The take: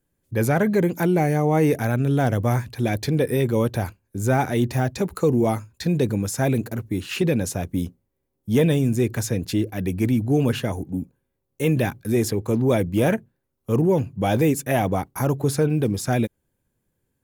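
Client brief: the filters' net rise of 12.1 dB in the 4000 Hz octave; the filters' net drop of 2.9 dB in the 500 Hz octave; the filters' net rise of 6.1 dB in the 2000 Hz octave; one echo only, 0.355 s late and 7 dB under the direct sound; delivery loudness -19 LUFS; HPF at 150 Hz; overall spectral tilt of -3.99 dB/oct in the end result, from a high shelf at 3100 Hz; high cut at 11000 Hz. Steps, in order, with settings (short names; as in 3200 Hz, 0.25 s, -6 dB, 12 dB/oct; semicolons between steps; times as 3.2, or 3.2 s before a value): HPF 150 Hz; LPF 11000 Hz; bell 500 Hz -4 dB; bell 2000 Hz +3 dB; high shelf 3100 Hz +8 dB; bell 4000 Hz +8.5 dB; echo 0.355 s -7 dB; gain +3.5 dB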